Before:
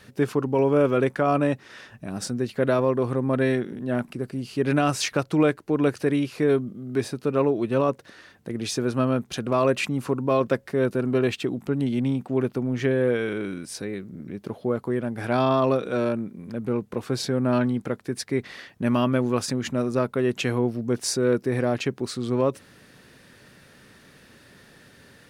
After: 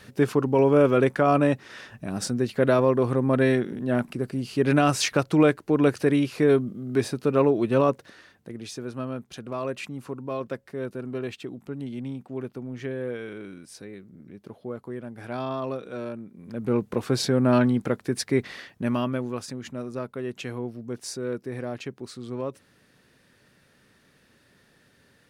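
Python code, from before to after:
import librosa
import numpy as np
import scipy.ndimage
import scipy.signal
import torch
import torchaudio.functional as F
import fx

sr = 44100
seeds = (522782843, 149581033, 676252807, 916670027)

y = fx.gain(x, sr, db=fx.line((7.87, 1.5), (8.71, -9.5), (16.27, -9.5), (16.75, 2.5), (18.38, 2.5), (19.45, -9.0)))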